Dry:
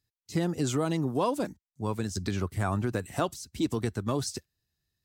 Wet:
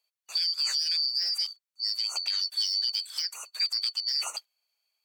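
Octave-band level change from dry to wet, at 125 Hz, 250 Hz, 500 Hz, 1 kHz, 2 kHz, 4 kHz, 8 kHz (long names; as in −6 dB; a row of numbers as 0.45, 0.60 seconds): below −40 dB, below −40 dB, below −25 dB, −14.5 dB, −3.5 dB, +18.0 dB, +2.0 dB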